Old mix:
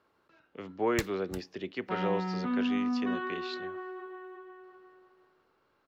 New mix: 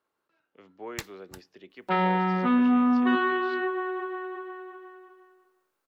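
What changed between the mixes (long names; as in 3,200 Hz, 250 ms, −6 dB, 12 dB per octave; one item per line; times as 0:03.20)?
speech −9.5 dB
second sound +11.5 dB
master: add low-shelf EQ 160 Hz −10.5 dB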